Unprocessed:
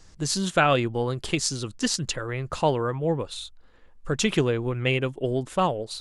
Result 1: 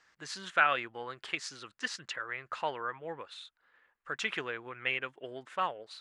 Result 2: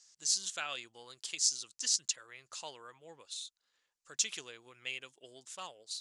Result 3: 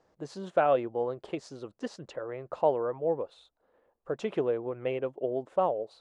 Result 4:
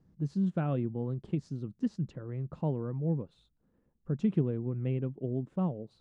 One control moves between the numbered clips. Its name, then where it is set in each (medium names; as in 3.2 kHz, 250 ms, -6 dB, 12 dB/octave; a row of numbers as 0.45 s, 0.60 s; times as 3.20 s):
band-pass filter, frequency: 1.7 kHz, 6.4 kHz, 590 Hz, 180 Hz